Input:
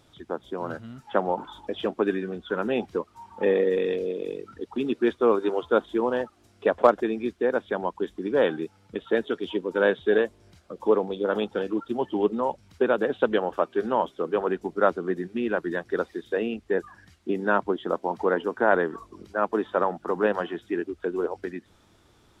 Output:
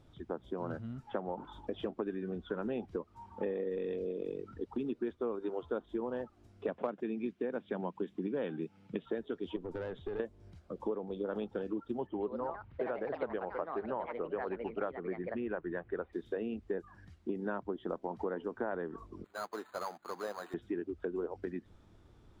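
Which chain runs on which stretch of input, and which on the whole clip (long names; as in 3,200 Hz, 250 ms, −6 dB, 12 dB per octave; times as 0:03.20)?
0:06.68–0:09.06: high-pass with resonance 170 Hz, resonance Q 2 + parametric band 2,600 Hz +8 dB 0.88 octaves
0:09.56–0:10.20: downward compressor 10 to 1, threshold −26 dBFS + tube saturation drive 28 dB, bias 0.35
0:12.07–0:16.13: low-pass filter 2,700 Hz 24 dB per octave + parametric band 230 Hz −6.5 dB 1.4 octaves + delay with pitch and tempo change per echo 136 ms, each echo +4 semitones, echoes 2, each echo −6 dB
0:19.24–0:20.54: variable-slope delta modulation 16 kbit/s + resonant band-pass 1,300 Hz, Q 1.4 + bad sample-rate conversion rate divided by 8×, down none, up hold
whole clip: spectral tilt −2.5 dB per octave; downward compressor 6 to 1, threshold −26 dBFS; level −7 dB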